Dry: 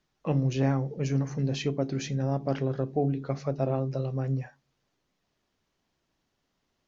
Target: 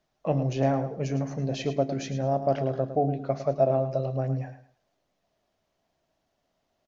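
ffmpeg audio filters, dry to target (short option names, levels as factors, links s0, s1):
-filter_complex "[0:a]equalizer=f=650:w=3:g=13.5,asplit=2[s0][s1];[s1]aecho=0:1:107|214|321:0.282|0.0733|0.0191[s2];[s0][s2]amix=inputs=2:normalize=0,volume=0.841"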